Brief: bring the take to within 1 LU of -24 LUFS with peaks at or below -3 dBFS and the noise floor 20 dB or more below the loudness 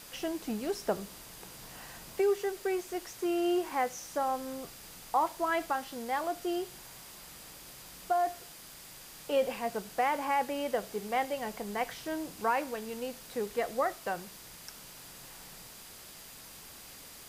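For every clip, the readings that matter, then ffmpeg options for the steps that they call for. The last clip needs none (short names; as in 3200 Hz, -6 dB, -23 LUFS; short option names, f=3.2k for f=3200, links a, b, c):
steady tone 4800 Hz; tone level -61 dBFS; noise floor -50 dBFS; noise floor target -54 dBFS; loudness -33.5 LUFS; peak -18.0 dBFS; loudness target -24.0 LUFS
-> -af "bandreject=f=4.8k:w=30"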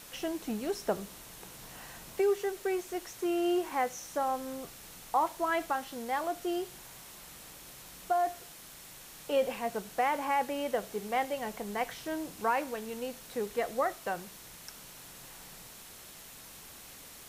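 steady tone none; noise floor -50 dBFS; noise floor target -54 dBFS
-> -af "afftdn=nr=6:nf=-50"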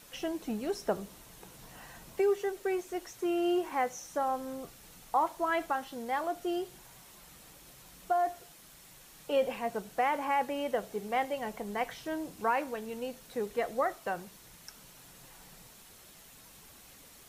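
noise floor -55 dBFS; loudness -33.5 LUFS; peak -18.5 dBFS; loudness target -24.0 LUFS
-> -af "volume=9.5dB"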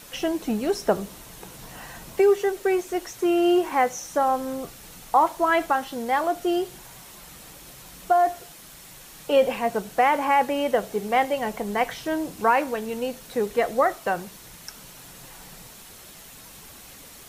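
loudness -24.0 LUFS; peak -9.0 dBFS; noise floor -46 dBFS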